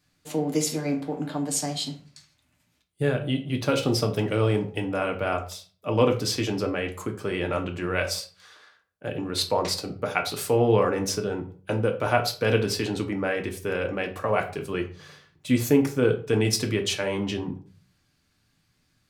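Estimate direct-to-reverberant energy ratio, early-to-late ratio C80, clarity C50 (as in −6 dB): 3.5 dB, 16.5 dB, 12.0 dB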